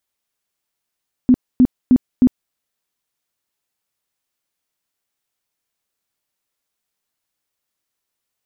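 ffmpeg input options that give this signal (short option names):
-f lavfi -i "aevalsrc='0.473*sin(2*PI*252*mod(t,0.31))*lt(mod(t,0.31),13/252)':d=1.24:s=44100"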